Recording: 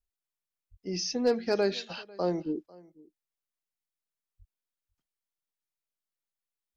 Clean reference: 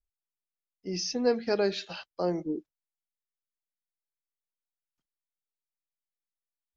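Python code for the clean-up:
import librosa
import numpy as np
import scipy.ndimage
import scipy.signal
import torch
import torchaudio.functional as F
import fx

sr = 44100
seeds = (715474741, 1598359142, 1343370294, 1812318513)

y = fx.fix_declip(x, sr, threshold_db=-16.5)
y = fx.fix_deplosive(y, sr, at_s=(0.7, 4.38))
y = fx.fix_echo_inverse(y, sr, delay_ms=497, level_db=-23.5)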